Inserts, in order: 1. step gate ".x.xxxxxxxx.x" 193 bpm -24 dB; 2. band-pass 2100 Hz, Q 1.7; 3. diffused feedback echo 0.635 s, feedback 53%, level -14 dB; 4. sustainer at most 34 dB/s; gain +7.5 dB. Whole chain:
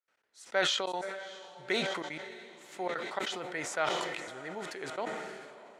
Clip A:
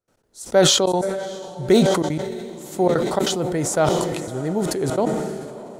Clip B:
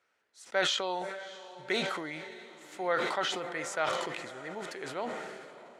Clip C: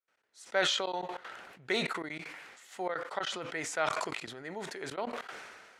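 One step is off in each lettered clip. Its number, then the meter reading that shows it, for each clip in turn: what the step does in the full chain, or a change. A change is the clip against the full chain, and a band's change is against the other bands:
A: 2, 2 kHz band -14.5 dB; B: 1, loudness change +1.0 LU; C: 3, momentary loudness spread change +1 LU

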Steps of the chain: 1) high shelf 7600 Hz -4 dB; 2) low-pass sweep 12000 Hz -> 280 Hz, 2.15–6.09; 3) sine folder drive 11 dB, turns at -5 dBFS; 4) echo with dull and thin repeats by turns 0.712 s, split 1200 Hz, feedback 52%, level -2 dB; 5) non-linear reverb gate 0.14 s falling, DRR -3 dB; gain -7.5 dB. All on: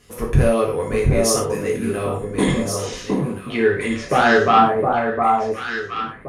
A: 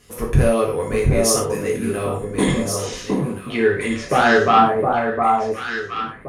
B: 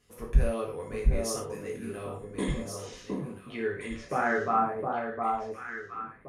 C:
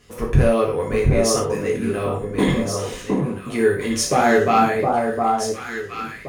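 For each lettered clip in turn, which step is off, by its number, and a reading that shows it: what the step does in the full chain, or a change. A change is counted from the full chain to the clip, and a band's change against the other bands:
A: 1, 8 kHz band +2.0 dB; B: 3, distortion -1 dB; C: 2, 2 kHz band -3.5 dB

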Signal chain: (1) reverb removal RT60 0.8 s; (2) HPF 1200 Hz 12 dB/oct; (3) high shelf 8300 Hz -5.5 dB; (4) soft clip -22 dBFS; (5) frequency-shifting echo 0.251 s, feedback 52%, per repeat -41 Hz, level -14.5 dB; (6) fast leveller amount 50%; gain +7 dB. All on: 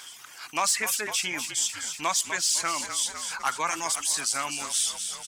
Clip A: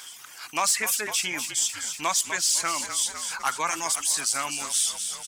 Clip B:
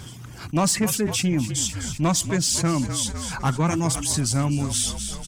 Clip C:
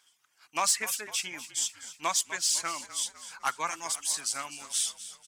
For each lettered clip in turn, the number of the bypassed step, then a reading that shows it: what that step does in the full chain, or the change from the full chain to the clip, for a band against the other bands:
3, loudness change +1.5 LU; 2, 125 Hz band +28.0 dB; 6, crest factor change +1.5 dB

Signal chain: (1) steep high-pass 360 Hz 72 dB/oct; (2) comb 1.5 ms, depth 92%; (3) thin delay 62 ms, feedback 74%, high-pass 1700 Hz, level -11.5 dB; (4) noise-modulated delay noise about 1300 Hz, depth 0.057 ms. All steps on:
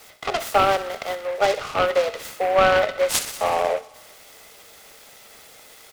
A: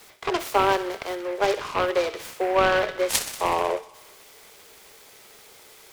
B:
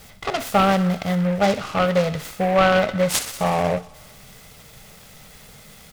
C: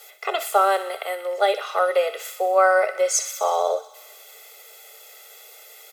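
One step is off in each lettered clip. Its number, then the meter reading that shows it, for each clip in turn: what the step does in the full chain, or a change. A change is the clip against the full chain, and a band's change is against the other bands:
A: 2, 250 Hz band +6.5 dB; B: 1, 125 Hz band +15.5 dB; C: 4, 4 kHz band -4.0 dB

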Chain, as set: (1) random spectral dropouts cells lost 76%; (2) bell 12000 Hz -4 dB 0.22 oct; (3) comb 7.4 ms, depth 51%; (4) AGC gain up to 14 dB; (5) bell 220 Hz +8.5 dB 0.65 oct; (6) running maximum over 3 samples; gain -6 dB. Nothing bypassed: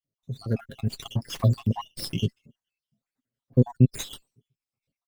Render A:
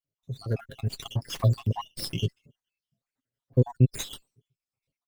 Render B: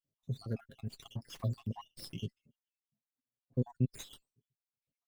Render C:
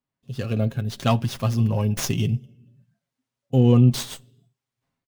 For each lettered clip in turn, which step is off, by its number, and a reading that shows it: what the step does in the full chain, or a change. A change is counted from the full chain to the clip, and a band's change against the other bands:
5, 250 Hz band -5.5 dB; 4, momentary loudness spread change -4 LU; 1, 4 kHz band -3.0 dB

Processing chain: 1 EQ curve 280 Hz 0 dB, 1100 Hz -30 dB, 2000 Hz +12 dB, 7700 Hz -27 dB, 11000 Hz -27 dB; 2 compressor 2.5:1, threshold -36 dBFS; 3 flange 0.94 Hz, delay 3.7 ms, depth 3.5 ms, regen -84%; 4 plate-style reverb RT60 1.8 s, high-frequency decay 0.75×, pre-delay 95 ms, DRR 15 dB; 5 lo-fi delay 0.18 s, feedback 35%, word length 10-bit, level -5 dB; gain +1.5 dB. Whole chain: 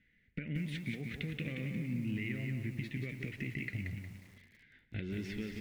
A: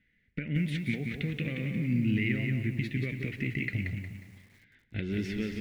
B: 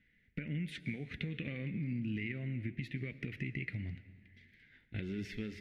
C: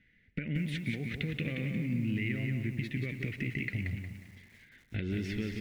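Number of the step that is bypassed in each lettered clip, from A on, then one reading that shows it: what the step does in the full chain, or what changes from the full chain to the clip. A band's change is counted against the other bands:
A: 2, mean gain reduction 6.0 dB; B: 5, momentary loudness spread change -1 LU; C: 3, loudness change +4.5 LU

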